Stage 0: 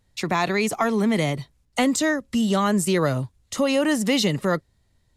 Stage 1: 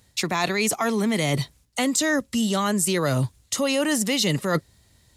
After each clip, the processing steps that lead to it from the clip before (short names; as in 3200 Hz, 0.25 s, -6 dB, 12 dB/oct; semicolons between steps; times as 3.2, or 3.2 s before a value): HPF 51 Hz; high shelf 3100 Hz +9 dB; reverse; compressor 10:1, threshold -27 dBFS, peak gain reduction 13.5 dB; reverse; gain +7.5 dB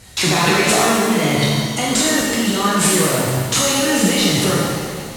CVSD 64 kbps; negative-ratio compressor -30 dBFS, ratio -1; shimmer reverb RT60 1.8 s, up +7 st, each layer -8 dB, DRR -6.5 dB; gain +7 dB